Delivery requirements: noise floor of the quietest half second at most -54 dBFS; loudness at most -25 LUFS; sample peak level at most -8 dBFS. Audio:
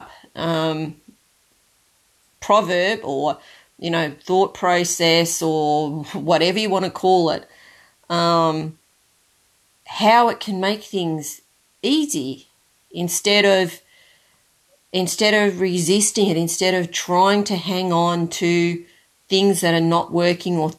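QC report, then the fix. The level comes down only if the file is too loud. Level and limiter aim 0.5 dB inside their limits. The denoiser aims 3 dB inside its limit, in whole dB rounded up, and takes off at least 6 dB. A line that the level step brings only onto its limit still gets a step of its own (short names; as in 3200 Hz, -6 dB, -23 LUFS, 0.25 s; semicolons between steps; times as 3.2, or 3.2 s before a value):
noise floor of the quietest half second -61 dBFS: OK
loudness -19.0 LUFS: fail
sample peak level -4.5 dBFS: fail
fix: gain -6.5 dB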